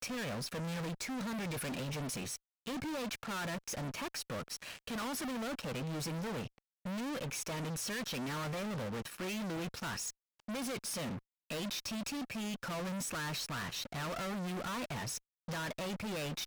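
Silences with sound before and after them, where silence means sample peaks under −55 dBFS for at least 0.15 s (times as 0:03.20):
0:02.37–0:02.66
0:06.58–0:06.85
0:10.11–0:10.40
0:11.19–0:11.50
0:15.18–0:15.48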